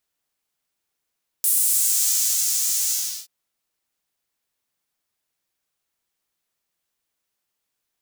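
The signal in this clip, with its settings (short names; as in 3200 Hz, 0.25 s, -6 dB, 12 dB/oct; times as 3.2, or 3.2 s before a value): synth patch with pulse-width modulation A3, noise -6 dB, filter highpass, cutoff 5000 Hz, Q 2, filter envelope 1 oct, filter decay 0.67 s, filter sustain 40%, attack 2.4 ms, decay 1.13 s, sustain -4 dB, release 0.37 s, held 1.46 s, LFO 1.8 Hz, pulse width 48%, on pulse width 12%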